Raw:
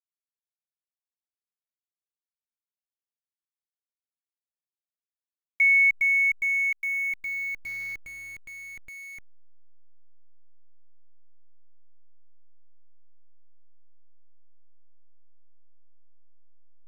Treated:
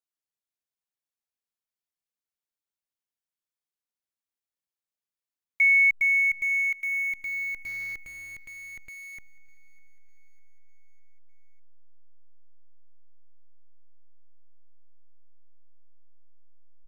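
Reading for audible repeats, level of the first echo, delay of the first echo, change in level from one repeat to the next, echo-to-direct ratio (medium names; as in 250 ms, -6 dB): 3, -24.0 dB, 602 ms, -4.5 dB, -22.0 dB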